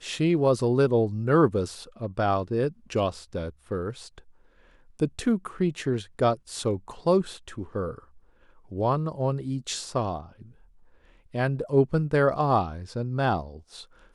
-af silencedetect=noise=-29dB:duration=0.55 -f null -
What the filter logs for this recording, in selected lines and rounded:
silence_start: 3.90
silence_end: 5.00 | silence_duration: 1.10
silence_start: 7.91
silence_end: 8.75 | silence_duration: 0.84
silence_start: 10.20
silence_end: 11.35 | silence_duration: 1.15
silence_start: 13.41
silence_end: 14.15 | silence_duration: 0.74